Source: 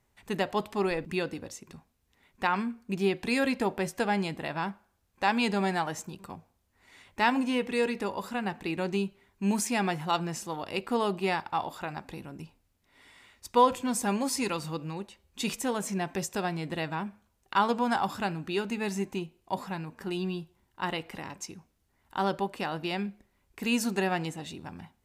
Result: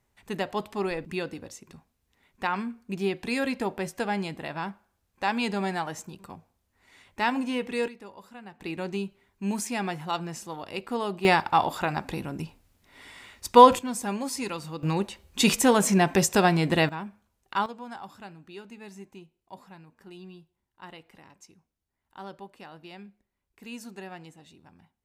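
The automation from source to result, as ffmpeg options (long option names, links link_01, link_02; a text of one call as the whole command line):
ffmpeg -i in.wav -af "asetnsamples=nb_out_samples=441:pad=0,asendcmd='7.88 volume volume -13dB;8.6 volume volume -2dB;11.25 volume volume 8.5dB;13.79 volume volume -2dB;14.83 volume volume 10.5dB;16.89 volume volume -2dB;17.66 volume volume -13dB',volume=-1dB" out.wav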